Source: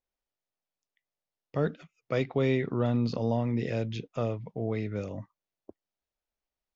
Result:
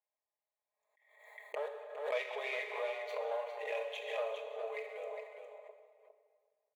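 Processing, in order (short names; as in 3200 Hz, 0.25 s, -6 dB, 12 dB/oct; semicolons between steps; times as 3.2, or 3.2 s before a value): Wiener smoothing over 15 samples; bell 770 Hz -5 dB 0.65 oct; comb 4.8 ms, depth 86%; in parallel at -2.5 dB: compressor, threshold -34 dBFS, peak gain reduction 13 dB; on the sum: fixed phaser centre 1400 Hz, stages 6; soft clip -24.5 dBFS, distortion -18 dB; brick-wall FIR high-pass 390 Hz; on a send: echo 0.408 s -7.5 dB; on the sum: plate-style reverb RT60 1.9 s, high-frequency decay 0.9×, DRR 4 dB; backwards sustainer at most 66 dB/s; gain -2 dB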